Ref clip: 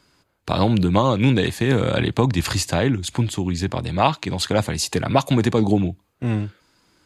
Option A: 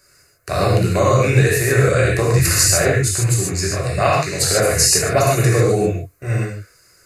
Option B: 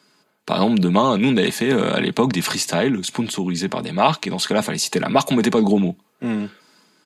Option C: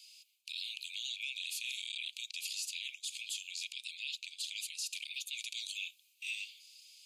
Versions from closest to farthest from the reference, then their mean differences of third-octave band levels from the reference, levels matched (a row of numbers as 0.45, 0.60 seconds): B, A, C; 3.0, 9.0, 26.5 decibels